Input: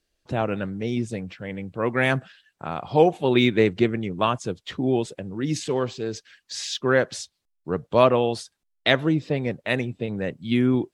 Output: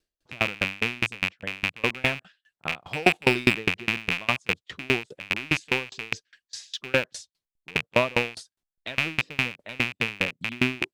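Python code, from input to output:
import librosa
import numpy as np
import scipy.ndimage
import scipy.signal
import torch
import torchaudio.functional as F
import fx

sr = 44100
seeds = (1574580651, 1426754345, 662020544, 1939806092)

y = fx.rattle_buzz(x, sr, strikes_db=-35.0, level_db=-6.0)
y = fx.leveller(y, sr, passes=1, at=(2.8, 3.55))
y = fx.tremolo_decay(y, sr, direction='decaying', hz=4.9, depth_db=30)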